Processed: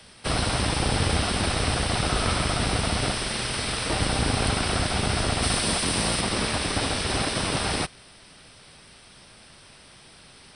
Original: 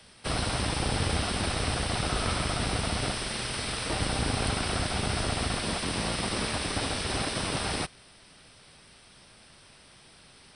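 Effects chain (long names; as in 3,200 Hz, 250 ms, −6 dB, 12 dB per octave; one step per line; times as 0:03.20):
0:05.42–0:06.20: high-shelf EQ 4,600 Hz → 7,600 Hz +8 dB
level +4.5 dB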